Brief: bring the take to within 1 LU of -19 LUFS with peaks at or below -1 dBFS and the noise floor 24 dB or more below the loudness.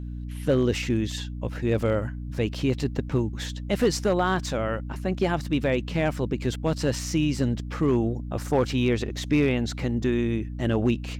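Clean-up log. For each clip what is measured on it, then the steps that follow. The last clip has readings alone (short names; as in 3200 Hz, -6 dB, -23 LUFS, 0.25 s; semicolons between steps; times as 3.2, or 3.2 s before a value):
clipped 0.5%; flat tops at -14.0 dBFS; hum 60 Hz; harmonics up to 300 Hz; hum level -31 dBFS; loudness -26.0 LUFS; peak -14.0 dBFS; loudness target -19.0 LUFS
-> clip repair -14 dBFS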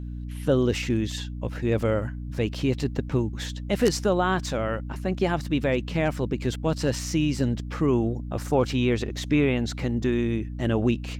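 clipped 0.0%; hum 60 Hz; harmonics up to 300 Hz; hum level -31 dBFS
-> de-hum 60 Hz, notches 5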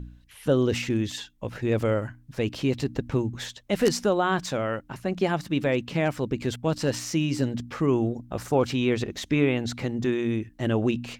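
hum none; loudness -26.5 LUFS; peak -5.5 dBFS; loudness target -19.0 LUFS
-> gain +7.5 dB; limiter -1 dBFS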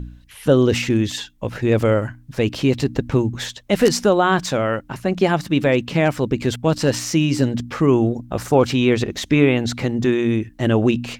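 loudness -19.0 LUFS; peak -1.0 dBFS; noise floor -47 dBFS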